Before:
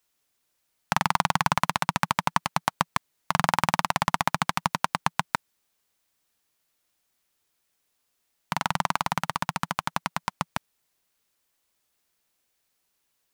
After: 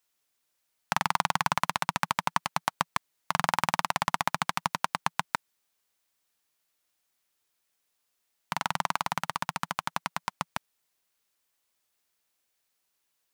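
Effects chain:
low-shelf EQ 360 Hz −5.5 dB
level −2.5 dB

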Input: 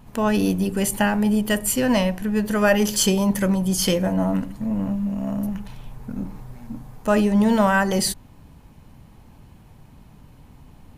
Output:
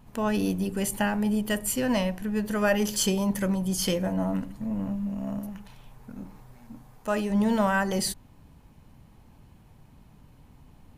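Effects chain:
0:05.39–0:07.30: low-shelf EQ 370 Hz −6.5 dB
level −6 dB

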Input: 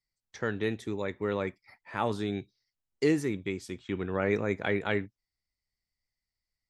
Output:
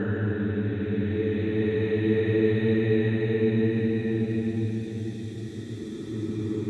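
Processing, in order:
extreme stretch with random phases 20×, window 0.25 s, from 0:00.53
spectral tilt −2.5 dB per octave
level +2 dB

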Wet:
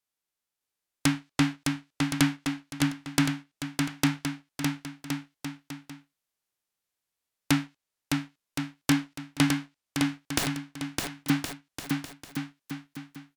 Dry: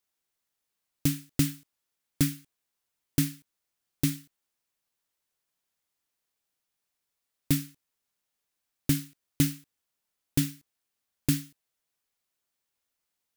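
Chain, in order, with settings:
spectral envelope flattened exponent 0.3
leveller curve on the samples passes 2
treble cut that deepens with the level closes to 2,200 Hz, closed at −20.5 dBFS
0:10.38–0:11.30: wrap-around overflow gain 24.5 dB
bouncing-ball delay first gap 610 ms, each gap 0.75×, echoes 5

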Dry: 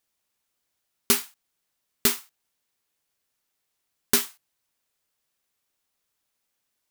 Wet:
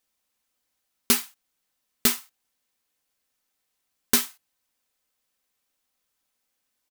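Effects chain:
comb filter 3.9 ms, depth 36%

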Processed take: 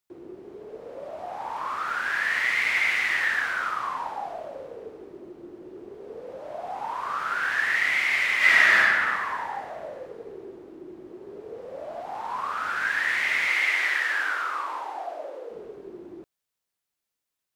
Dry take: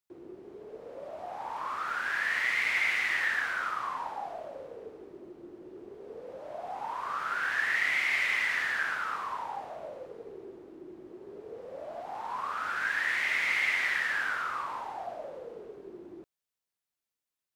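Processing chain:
0:08.37–0:08.79: thrown reverb, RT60 1.9 s, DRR −8.5 dB
0:13.47–0:15.51: Butterworth high-pass 270 Hz 96 dB per octave
level +4.5 dB

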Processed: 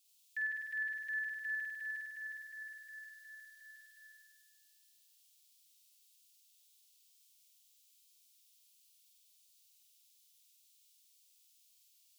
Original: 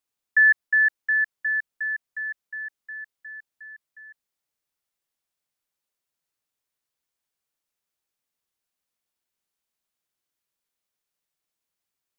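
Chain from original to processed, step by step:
inverse Chebyshev high-pass filter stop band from 1,500 Hz, stop band 40 dB
brickwall limiter −46.5 dBFS, peak gain reduction 9 dB
flutter between parallel walls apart 8.5 metres, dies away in 1.5 s
level +13 dB

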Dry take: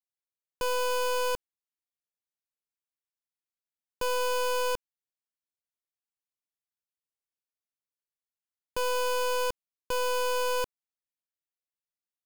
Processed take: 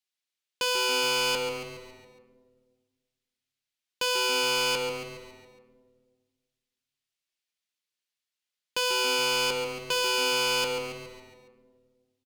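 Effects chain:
meter weighting curve D
echo with shifted repeats 139 ms, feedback 52%, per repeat −120 Hz, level −10 dB
on a send at −8 dB: convolution reverb RT60 1.7 s, pre-delay 3 ms

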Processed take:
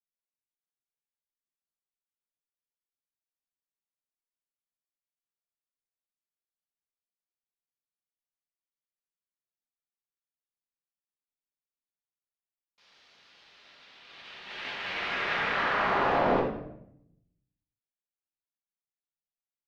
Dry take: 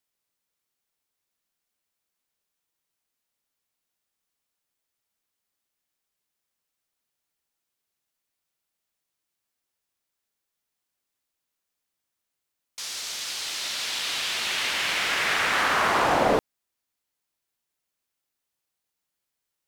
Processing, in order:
noise gate −26 dBFS, range −16 dB
high-frequency loss of the air 270 metres
rectangular room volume 180 cubic metres, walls mixed, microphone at 1.3 metres
level −7 dB

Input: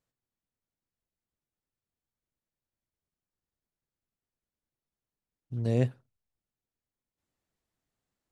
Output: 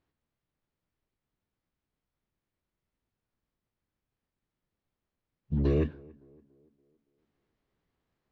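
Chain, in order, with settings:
dynamic equaliser 120 Hz, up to −4 dB, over −35 dBFS, Q 1
downward compressor 12 to 1, threshold −28 dBFS, peak gain reduction 8 dB
phase-vocoder pitch shift with formants kept −8.5 semitones
high-frequency loss of the air 210 metres
tape delay 283 ms, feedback 54%, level −22 dB, low-pass 1,000 Hz
level +8.5 dB

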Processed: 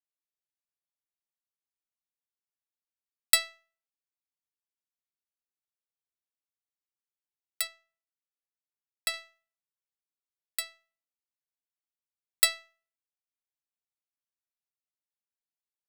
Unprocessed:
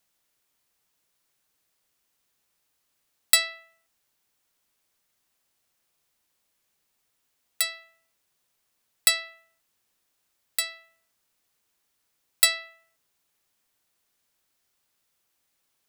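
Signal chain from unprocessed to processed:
0:07.67–0:09.14: high-shelf EQ 3,800 Hz −8.5 dB
power curve on the samples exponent 1.4

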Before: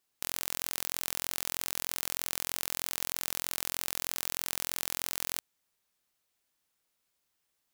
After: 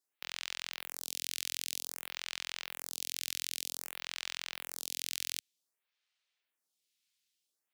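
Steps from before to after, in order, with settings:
meter weighting curve D
phaser with staggered stages 0.53 Hz
level −7 dB

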